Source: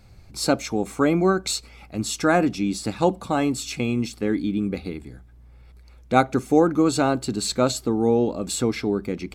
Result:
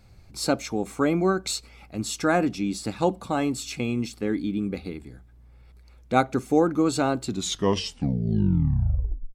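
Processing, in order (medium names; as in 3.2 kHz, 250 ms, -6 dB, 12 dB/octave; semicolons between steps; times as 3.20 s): tape stop on the ending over 2.13 s; trim -3 dB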